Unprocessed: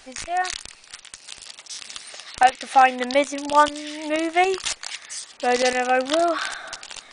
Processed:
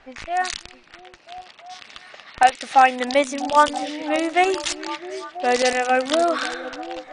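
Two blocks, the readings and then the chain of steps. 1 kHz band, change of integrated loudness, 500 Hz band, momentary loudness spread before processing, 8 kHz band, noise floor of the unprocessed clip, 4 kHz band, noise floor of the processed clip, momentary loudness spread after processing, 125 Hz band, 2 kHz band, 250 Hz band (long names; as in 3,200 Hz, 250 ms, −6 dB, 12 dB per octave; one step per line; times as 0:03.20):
+1.0 dB, +1.0 dB, +1.0 dB, 20 LU, −1.5 dB, −50 dBFS, +0.5 dB, −49 dBFS, 23 LU, can't be measured, +1.0 dB, +1.5 dB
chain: low-pass that shuts in the quiet parts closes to 1,900 Hz, open at −18 dBFS
on a send: echo through a band-pass that steps 330 ms, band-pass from 210 Hz, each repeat 0.7 octaves, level −7.5 dB
on the sum: level +1 dB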